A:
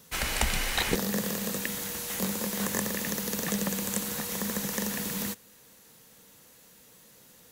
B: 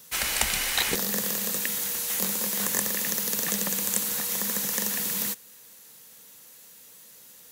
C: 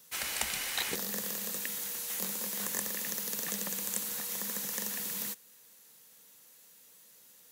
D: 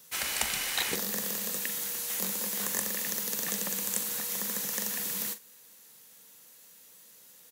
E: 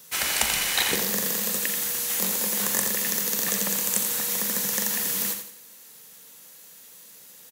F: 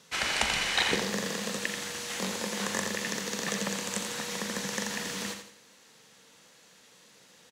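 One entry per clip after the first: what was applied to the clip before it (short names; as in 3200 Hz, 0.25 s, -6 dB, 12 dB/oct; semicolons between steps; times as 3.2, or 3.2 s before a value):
tilt +2 dB/oct
HPF 110 Hz 6 dB/oct; gain -8 dB
doubler 42 ms -12 dB; gain +3 dB
feedback echo 85 ms, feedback 36%, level -7.5 dB; gain +6 dB
air absorption 100 m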